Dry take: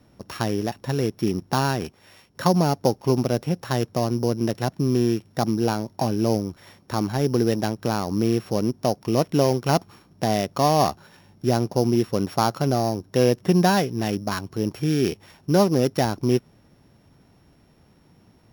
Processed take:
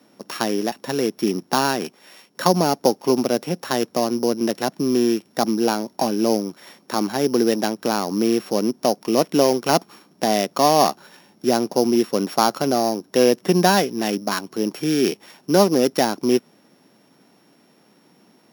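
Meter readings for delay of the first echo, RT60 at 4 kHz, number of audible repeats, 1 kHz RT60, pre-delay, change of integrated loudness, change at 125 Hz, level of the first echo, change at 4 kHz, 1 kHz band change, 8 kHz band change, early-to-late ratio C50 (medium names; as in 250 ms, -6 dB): no echo, no reverb, no echo, no reverb, no reverb, +2.5 dB, -7.0 dB, no echo, +5.5 dB, +3.5 dB, +6.5 dB, no reverb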